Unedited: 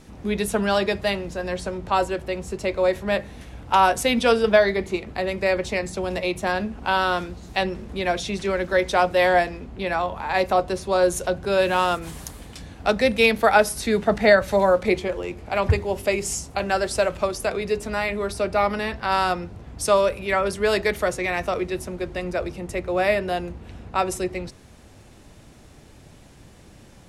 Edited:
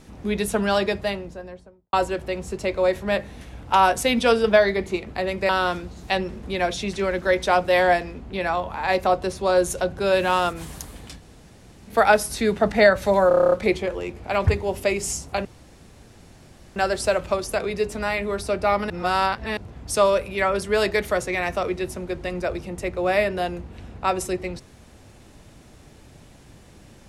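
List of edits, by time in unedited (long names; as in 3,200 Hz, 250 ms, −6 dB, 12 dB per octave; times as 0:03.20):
0:00.77–0:01.93: fade out and dull
0:05.49–0:06.95: remove
0:12.64–0:13.38: fill with room tone, crossfade 0.10 s
0:14.74: stutter 0.03 s, 9 plays
0:16.67: splice in room tone 1.31 s
0:18.81–0:19.48: reverse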